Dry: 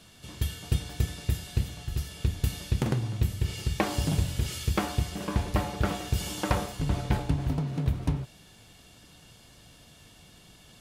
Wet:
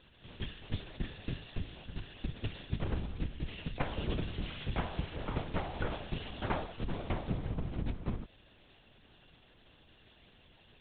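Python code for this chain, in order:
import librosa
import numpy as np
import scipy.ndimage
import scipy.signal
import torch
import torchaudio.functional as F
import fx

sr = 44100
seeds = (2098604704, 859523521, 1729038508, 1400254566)

y = scipy.signal.sosfilt(scipy.signal.butter(2, 100.0, 'highpass', fs=sr, output='sos'), x)
y = fx.lpc_vocoder(y, sr, seeds[0], excitation='whisper', order=8)
y = fx.band_squash(y, sr, depth_pct=40, at=(3.75, 5.9))
y = y * librosa.db_to_amplitude(-5.5)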